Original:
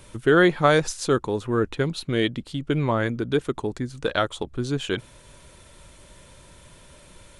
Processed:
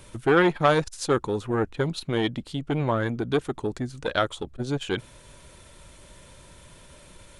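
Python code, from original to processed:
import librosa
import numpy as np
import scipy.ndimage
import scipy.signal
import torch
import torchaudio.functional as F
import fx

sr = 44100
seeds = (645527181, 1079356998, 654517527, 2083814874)

y = fx.transformer_sat(x, sr, knee_hz=910.0)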